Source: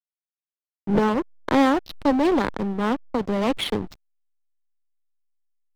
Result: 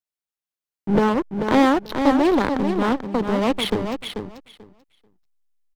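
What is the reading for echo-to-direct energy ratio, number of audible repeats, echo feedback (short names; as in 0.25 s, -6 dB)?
-7.0 dB, 2, 16%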